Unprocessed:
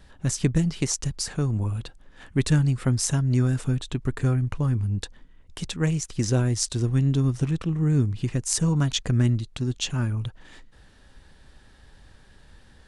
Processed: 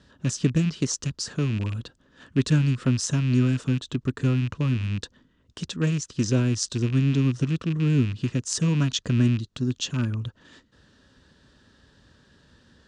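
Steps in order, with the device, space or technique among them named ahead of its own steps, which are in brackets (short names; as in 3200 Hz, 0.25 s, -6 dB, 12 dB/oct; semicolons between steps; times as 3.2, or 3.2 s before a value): car door speaker with a rattle (rattling part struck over -24 dBFS, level -24 dBFS; speaker cabinet 91–7200 Hz, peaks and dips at 250 Hz +4 dB, 790 Hz -10 dB, 2200 Hz -9 dB)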